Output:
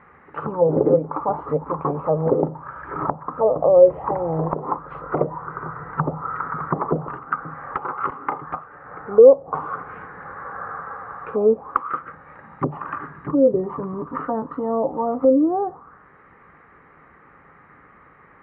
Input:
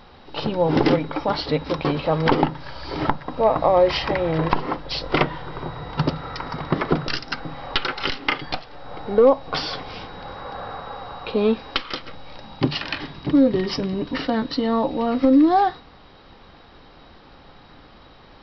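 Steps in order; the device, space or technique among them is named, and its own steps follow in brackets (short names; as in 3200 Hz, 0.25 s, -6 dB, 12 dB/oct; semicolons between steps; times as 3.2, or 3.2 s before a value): envelope filter bass rig (envelope low-pass 550–2100 Hz down, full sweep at -15 dBFS; speaker cabinet 62–2200 Hz, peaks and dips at 160 Hz +6 dB, 430 Hz +5 dB, 680 Hz -3 dB, 1200 Hz +9 dB); gain -7 dB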